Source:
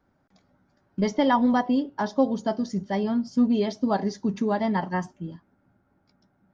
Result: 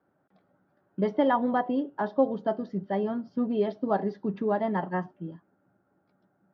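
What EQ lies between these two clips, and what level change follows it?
distance through air 500 m; cabinet simulation 190–6100 Hz, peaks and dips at 240 Hz -8 dB, 950 Hz -4 dB, 2.2 kHz -6 dB; +2.0 dB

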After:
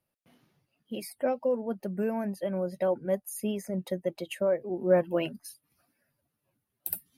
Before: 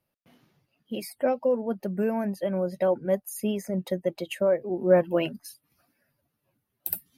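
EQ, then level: peaking EQ 9.9 kHz +6 dB 0.2 oct; -3.5 dB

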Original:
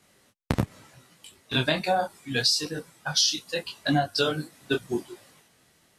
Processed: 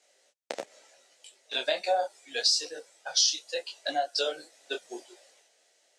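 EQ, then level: ladder high-pass 480 Hz, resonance 45%; resonant low-pass 7 kHz, resonance Q 1.9; peaking EQ 1.1 kHz -11.5 dB 0.66 oct; +4.0 dB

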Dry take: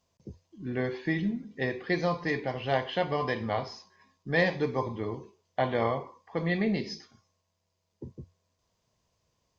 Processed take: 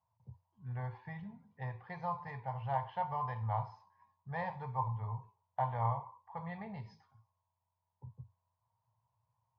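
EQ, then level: two resonant band-passes 320 Hz, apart 3 oct; +4.5 dB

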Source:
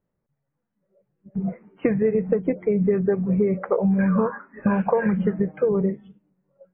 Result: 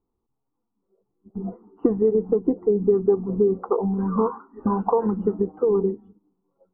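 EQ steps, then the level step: Savitzky-Golay filter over 65 samples; static phaser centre 580 Hz, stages 6; +4.5 dB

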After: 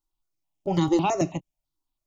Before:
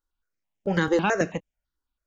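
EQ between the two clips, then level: peaking EQ 170 Hz +2.5 dB 1.9 oct; static phaser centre 320 Hz, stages 8; +2.5 dB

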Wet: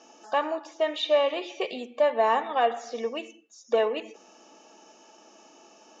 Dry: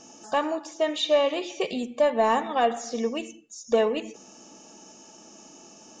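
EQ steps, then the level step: band-pass 400–3900 Hz; 0.0 dB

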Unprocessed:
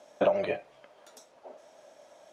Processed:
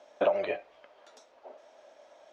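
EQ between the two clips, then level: low-pass 4.8 kHz 12 dB/octave; peaking EQ 140 Hz -13.5 dB 1.3 oct; 0.0 dB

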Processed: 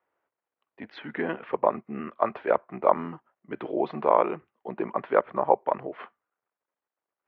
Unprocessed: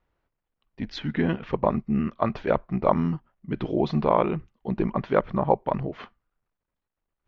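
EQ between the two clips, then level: high-pass 83 Hz 24 dB/octave; low-pass 4.6 kHz; three-band isolator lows -21 dB, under 340 Hz, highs -21 dB, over 2.7 kHz; +1.5 dB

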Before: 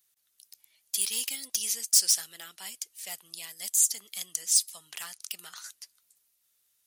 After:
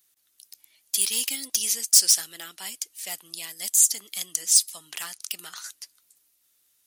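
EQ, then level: peaking EQ 300 Hz +7 dB 0.49 oct; +5.0 dB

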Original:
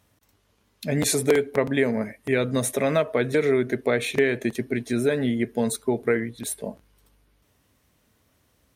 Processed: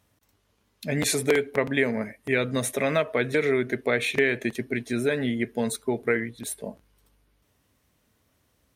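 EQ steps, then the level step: dynamic bell 2.3 kHz, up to +6 dB, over -39 dBFS, Q 0.83; -3.0 dB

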